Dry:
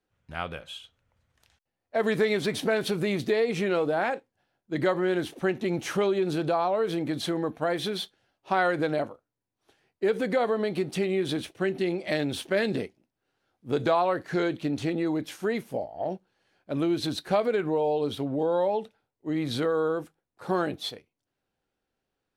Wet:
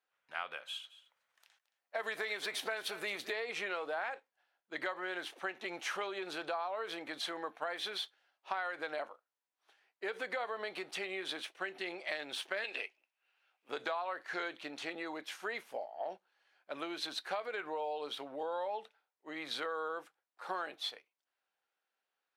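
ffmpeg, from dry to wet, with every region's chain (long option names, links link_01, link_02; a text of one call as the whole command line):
ffmpeg -i in.wav -filter_complex "[0:a]asettb=1/sr,asplit=3[link_01][link_02][link_03];[link_01]atrim=end=0.634[link_04];[link_02]atrim=start=0.63:end=3.34,asetpts=PTS-STARTPTS,afade=type=in:duration=0.004:curve=qsin,afade=type=out:start_time=2.706:duration=0.004:curve=qsin,highshelf=frequency=9500:gain=10.5,aecho=1:1:221:0.133,atrim=end_sample=119511[link_05];[link_03]atrim=start=3.336[link_06];[link_04][link_05]acrossfade=duration=0.004:curve1=hsin:curve2=qsin[link_07];[link_07][link_06]acrossfade=duration=0.004:curve1=qsin:curve2=hsin,asettb=1/sr,asplit=3[link_08][link_09][link_10];[link_08]atrim=end=12.644[link_11];[link_09]atrim=start=12.64:end=13.69,asetpts=PTS-STARTPTS,afade=type=in:duration=0.004:curve=qsin,afade=type=out:start_time=1.046:duration=0.004:curve=qsin,highpass=380,equalizer=frequency=2600:width_type=o:width=0.44:gain=13[link_12];[link_10]atrim=start=13.686[link_13];[link_11][link_12]acrossfade=duration=0.004:curve1=hsin:curve2=qsin[link_14];[link_14][link_13]acrossfade=duration=0.004:curve1=qsin:curve2=hsin,highpass=970,highshelf=frequency=5000:gain=-11.5,acompressor=threshold=-35dB:ratio=6,volume=1dB" out.wav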